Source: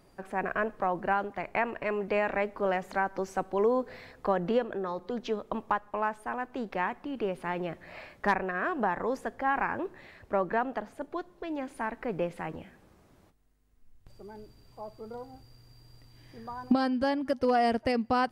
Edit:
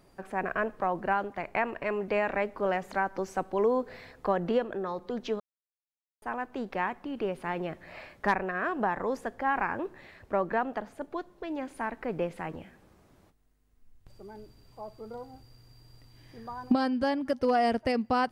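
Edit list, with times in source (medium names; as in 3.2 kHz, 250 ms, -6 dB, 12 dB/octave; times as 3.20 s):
5.40–6.22 s: mute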